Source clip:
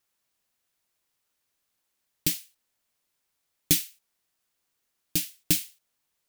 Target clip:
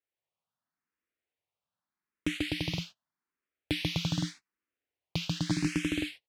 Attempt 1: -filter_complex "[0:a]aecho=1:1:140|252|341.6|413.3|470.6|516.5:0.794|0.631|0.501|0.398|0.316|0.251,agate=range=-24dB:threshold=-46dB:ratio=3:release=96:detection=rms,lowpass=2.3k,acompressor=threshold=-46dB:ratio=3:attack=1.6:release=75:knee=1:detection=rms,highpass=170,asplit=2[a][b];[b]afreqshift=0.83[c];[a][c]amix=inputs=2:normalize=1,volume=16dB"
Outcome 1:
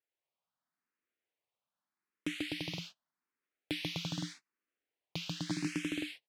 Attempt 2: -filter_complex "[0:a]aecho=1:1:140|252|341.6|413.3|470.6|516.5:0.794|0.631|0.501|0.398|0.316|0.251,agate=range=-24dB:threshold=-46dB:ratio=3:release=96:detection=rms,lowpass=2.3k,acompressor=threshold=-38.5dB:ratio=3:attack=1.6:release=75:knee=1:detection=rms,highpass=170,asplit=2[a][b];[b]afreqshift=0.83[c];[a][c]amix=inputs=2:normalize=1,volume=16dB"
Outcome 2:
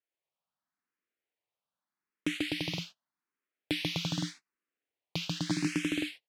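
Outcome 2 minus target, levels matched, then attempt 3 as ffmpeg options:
125 Hz band -3.0 dB
-filter_complex "[0:a]aecho=1:1:140|252|341.6|413.3|470.6|516.5:0.794|0.631|0.501|0.398|0.316|0.251,agate=range=-24dB:threshold=-46dB:ratio=3:release=96:detection=rms,lowpass=2.3k,acompressor=threshold=-38.5dB:ratio=3:attack=1.6:release=75:knee=1:detection=rms,highpass=64,asplit=2[a][b];[b]afreqshift=0.83[c];[a][c]amix=inputs=2:normalize=1,volume=16dB"

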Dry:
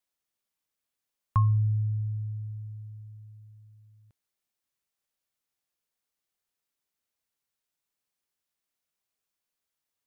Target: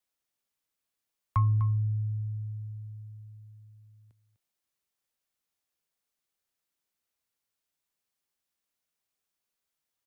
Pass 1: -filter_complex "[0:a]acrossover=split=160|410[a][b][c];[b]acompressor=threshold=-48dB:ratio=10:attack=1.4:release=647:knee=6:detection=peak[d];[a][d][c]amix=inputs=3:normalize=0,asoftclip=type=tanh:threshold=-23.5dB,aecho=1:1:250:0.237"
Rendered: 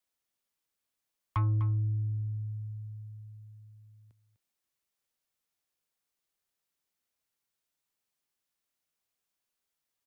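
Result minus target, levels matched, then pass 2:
soft clip: distortion +15 dB
-filter_complex "[0:a]acrossover=split=160|410[a][b][c];[b]acompressor=threshold=-48dB:ratio=10:attack=1.4:release=647:knee=6:detection=peak[d];[a][d][c]amix=inputs=3:normalize=0,asoftclip=type=tanh:threshold=-13dB,aecho=1:1:250:0.237"

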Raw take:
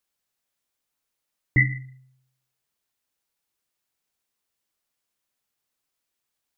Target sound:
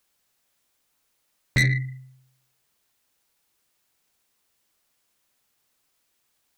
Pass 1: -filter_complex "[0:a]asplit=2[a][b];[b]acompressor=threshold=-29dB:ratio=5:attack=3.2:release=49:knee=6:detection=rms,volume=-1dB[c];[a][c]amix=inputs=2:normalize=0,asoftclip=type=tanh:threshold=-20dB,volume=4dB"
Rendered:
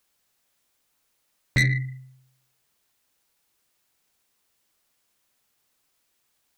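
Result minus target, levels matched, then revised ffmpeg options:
compressor: peak gain reduction +6.5 dB
-filter_complex "[0:a]asplit=2[a][b];[b]acompressor=threshold=-21dB:ratio=5:attack=3.2:release=49:knee=6:detection=rms,volume=-1dB[c];[a][c]amix=inputs=2:normalize=0,asoftclip=type=tanh:threshold=-20dB,volume=4dB"

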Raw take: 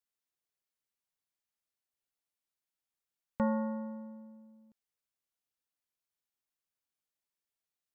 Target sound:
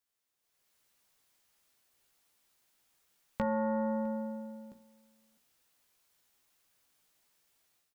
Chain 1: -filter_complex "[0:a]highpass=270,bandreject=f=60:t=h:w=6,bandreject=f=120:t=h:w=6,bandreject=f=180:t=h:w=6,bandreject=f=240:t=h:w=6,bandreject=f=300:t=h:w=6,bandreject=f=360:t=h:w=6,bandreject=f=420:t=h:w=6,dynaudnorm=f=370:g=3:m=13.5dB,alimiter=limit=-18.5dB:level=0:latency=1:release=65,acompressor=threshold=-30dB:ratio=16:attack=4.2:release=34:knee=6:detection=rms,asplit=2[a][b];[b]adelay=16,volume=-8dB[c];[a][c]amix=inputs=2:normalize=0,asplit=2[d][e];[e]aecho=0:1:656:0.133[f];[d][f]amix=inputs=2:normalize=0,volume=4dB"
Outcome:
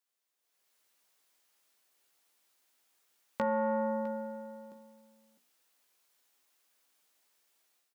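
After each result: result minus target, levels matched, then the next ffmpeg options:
echo-to-direct +8.5 dB; 250 Hz band -3.5 dB
-filter_complex "[0:a]highpass=270,bandreject=f=60:t=h:w=6,bandreject=f=120:t=h:w=6,bandreject=f=180:t=h:w=6,bandreject=f=240:t=h:w=6,bandreject=f=300:t=h:w=6,bandreject=f=360:t=h:w=6,bandreject=f=420:t=h:w=6,dynaudnorm=f=370:g=3:m=13.5dB,alimiter=limit=-18.5dB:level=0:latency=1:release=65,acompressor=threshold=-30dB:ratio=16:attack=4.2:release=34:knee=6:detection=rms,asplit=2[a][b];[b]adelay=16,volume=-8dB[c];[a][c]amix=inputs=2:normalize=0,asplit=2[d][e];[e]aecho=0:1:656:0.0501[f];[d][f]amix=inputs=2:normalize=0,volume=4dB"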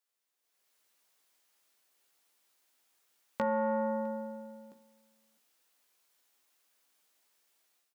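250 Hz band -3.5 dB
-filter_complex "[0:a]bandreject=f=60:t=h:w=6,bandreject=f=120:t=h:w=6,bandreject=f=180:t=h:w=6,bandreject=f=240:t=h:w=6,bandreject=f=300:t=h:w=6,bandreject=f=360:t=h:w=6,bandreject=f=420:t=h:w=6,dynaudnorm=f=370:g=3:m=13.5dB,alimiter=limit=-18.5dB:level=0:latency=1:release=65,acompressor=threshold=-30dB:ratio=16:attack=4.2:release=34:knee=6:detection=rms,asplit=2[a][b];[b]adelay=16,volume=-8dB[c];[a][c]amix=inputs=2:normalize=0,asplit=2[d][e];[e]aecho=0:1:656:0.0501[f];[d][f]amix=inputs=2:normalize=0,volume=4dB"

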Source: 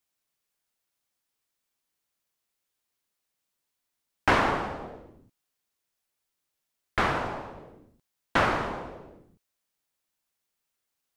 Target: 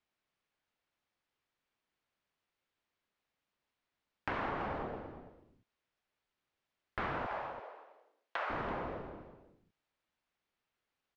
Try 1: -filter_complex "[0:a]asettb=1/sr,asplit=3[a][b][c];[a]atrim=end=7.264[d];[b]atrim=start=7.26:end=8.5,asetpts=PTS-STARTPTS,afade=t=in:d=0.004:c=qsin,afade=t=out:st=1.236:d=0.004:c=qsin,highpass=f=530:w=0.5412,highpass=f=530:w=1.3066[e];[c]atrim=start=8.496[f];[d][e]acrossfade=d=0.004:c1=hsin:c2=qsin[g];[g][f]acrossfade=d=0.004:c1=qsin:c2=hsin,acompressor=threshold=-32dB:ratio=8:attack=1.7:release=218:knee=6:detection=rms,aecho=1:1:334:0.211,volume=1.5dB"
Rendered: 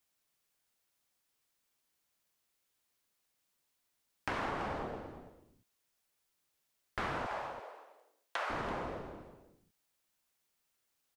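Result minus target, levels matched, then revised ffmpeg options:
4000 Hz band +4.0 dB
-filter_complex "[0:a]asettb=1/sr,asplit=3[a][b][c];[a]atrim=end=7.264[d];[b]atrim=start=7.26:end=8.5,asetpts=PTS-STARTPTS,afade=t=in:d=0.004:c=qsin,afade=t=out:st=1.236:d=0.004:c=qsin,highpass=f=530:w=0.5412,highpass=f=530:w=1.3066[e];[c]atrim=start=8.496[f];[d][e]acrossfade=d=0.004:c1=hsin:c2=qsin[g];[g][f]acrossfade=d=0.004:c1=qsin:c2=hsin,acompressor=threshold=-32dB:ratio=8:attack=1.7:release=218:knee=6:detection=rms,lowpass=3k,aecho=1:1:334:0.211,volume=1.5dB"

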